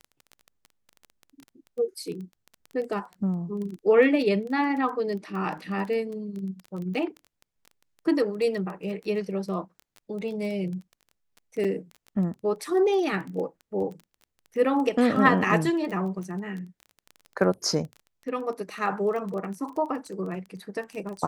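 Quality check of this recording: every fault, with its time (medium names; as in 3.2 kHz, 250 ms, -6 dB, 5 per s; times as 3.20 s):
crackle 15 per s -33 dBFS
11.64–11.65 s: dropout 5.8 ms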